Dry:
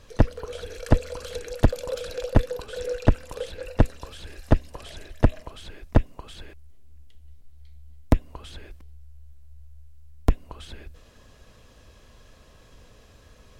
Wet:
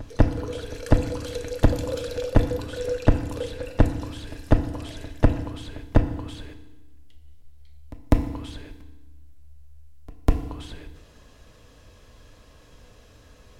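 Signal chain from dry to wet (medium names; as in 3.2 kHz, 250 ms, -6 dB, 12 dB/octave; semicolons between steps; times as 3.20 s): reverse echo 199 ms -23.5 dB; FDN reverb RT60 1.1 s, low-frequency decay 1.3×, high-frequency decay 0.9×, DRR 7 dB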